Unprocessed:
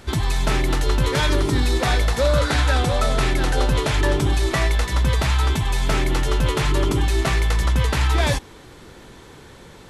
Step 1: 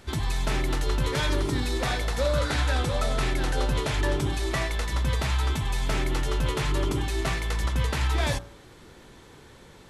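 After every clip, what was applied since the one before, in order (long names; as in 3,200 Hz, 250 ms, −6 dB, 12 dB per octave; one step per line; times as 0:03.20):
hum removal 56.73 Hz, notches 29
level −6 dB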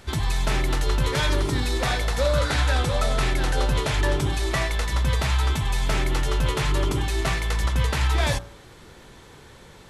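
parametric band 290 Hz −3.5 dB 0.95 octaves
level +3.5 dB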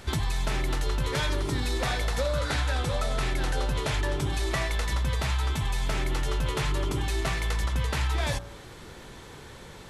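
downward compressor 4 to 1, threshold −27 dBFS, peak gain reduction 9 dB
level +2 dB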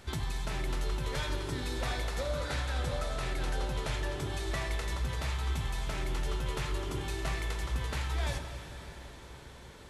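convolution reverb RT60 4.6 s, pre-delay 8 ms, DRR 6 dB
level −7.5 dB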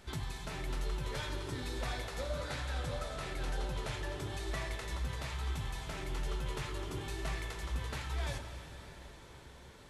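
flanger 1.1 Hz, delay 4.4 ms, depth 8.5 ms, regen −55%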